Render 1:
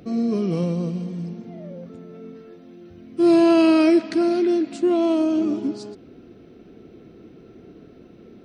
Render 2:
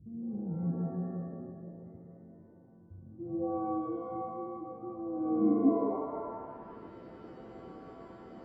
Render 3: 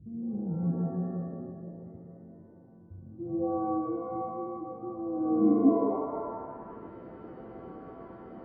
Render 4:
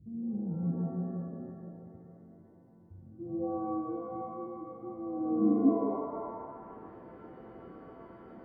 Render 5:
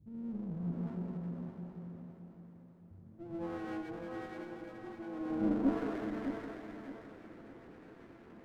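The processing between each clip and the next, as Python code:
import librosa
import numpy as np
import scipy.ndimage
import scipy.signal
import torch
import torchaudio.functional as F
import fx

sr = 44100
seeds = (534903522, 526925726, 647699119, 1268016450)

y1 = fx.filter_sweep_lowpass(x, sr, from_hz=110.0, to_hz=1400.0, start_s=4.98, end_s=6.68, q=1.9)
y1 = fx.rev_shimmer(y1, sr, seeds[0], rt60_s=1.3, semitones=7, shimmer_db=-2, drr_db=5.0)
y1 = y1 * librosa.db_to_amplitude(-6.0)
y2 = scipy.signal.sosfilt(scipy.signal.butter(2, 1900.0, 'lowpass', fs=sr, output='sos'), y1)
y2 = y2 * librosa.db_to_amplitude(3.5)
y3 = fx.echo_wet_highpass(y2, sr, ms=135, feedback_pct=79, hz=1400.0, wet_db=-3.5)
y3 = fx.dynamic_eq(y3, sr, hz=220.0, q=2.4, threshold_db=-46.0, ratio=4.0, max_db=4)
y3 = y3 * librosa.db_to_amplitude(-4.5)
y4 = fx.lower_of_two(y3, sr, delay_ms=0.45)
y4 = fx.echo_feedback(y4, sr, ms=613, feedback_pct=32, wet_db=-8)
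y4 = y4 * librosa.db_to_amplitude(-5.0)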